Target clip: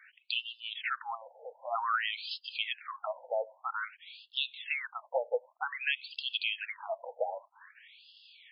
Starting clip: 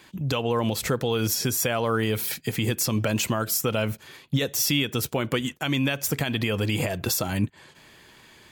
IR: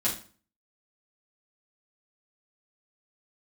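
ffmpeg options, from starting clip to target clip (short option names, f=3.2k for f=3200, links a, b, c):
-af "afftfilt=real='re*between(b*sr/1024,630*pow(3800/630,0.5+0.5*sin(2*PI*0.52*pts/sr))/1.41,630*pow(3800/630,0.5+0.5*sin(2*PI*0.52*pts/sr))*1.41)':imag='im*between(b*sr/1024,630*pow(3800/630,0.5+0.5*sin(2*PI*0.52*pts/sr))/1.41,630*pow(3800/630,0.5+0.5*sin(2*PI*0.52*pts/sr))*1.41)':win_size=1024:overlap=0.75"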